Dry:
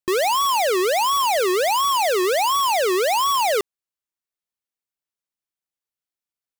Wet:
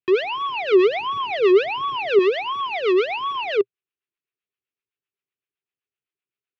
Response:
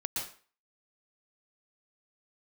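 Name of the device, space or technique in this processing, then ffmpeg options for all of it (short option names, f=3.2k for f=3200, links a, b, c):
guitar amplifier with harmonic tremolo: -filter_complex "[0:a]acrossover=split=560[a][b];[a]aeval=exprs='val(0)*(1-0.7/2+0.7/2*cos(2*PI*7.8*n/s))':c=same[c];[b]aeval=exprs='val(0)*(1-0.7/2-0.7/2*cos(2*PI*7.8*n/s))':c=same[d];[c][d]amix=inputs=2:normalize=0,asoftclip=type=tanh:threshold=-22dB,highpass=90,equalizer=f=120:t=q:w=4:g=5,equalizer=f=220:t=q:w=4:g=-5,equalizer=f=400:t=q:w=4:g=10,equalizer=f=580:t=q:w=4:g=-9,equalizer=f=870:t=q:w=4:g=-9,equalizer=f=2.6k:t=q:w=4:g=6,lowpass=f=3.4k:w=0.5412,lowpass=f=3.4k:w=1.3066,asettb=1/sr,asplit=3[e][f][g];[e]atrim=end=0.724[h];[f]atrim=start=0.72:end=2.19,asetpts=PTS-STARTPTS,afade=t=in:d=0.004:c=qsin,afade=t=out:st=1.466:d=0.004:c=qsin,equalizer=f=110:w=0.42:g=8.5[i];[g]atrim=start=2.186[j];[h][i]acrossfade=d=0.004:c1=hsin:c2=qsin[k];[k][j]acrossfade=d=0.004:c1=qsin:c2=hsin,volume=4dB"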